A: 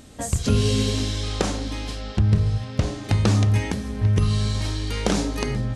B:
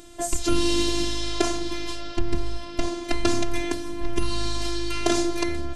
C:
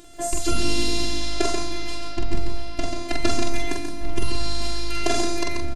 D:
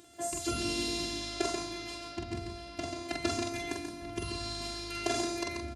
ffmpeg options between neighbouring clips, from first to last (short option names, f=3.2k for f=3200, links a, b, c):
-af "afftfilt=real='hypot(re,im)*cos(PI*b)':imag='0':win_size=512:overlap=0.75,volume=4.5dB"
-af "aecho=1:1:45|136|170:0.708|0.501|0.316,volume=-1dB"
-af "highpass=f=65:w=0.5412,highpass=f=65:w=1.3066,volume=-8dB"